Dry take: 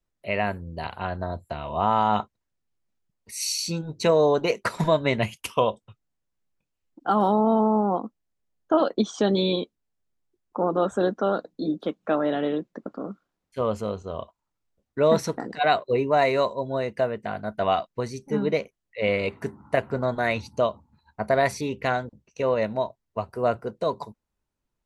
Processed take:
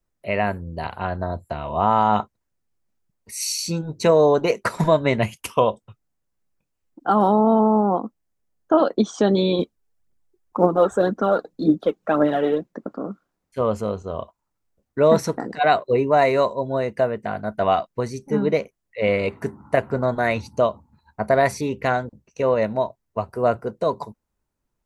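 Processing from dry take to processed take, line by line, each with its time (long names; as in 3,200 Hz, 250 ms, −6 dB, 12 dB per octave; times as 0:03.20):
0:09.59–0:12.66: phase shifter 1.9 Hz, delay 2.8 ms, feedback 52%
whole clip: parametric band 3,400 Hz −5 dB 1.2 octaves; level +4 dB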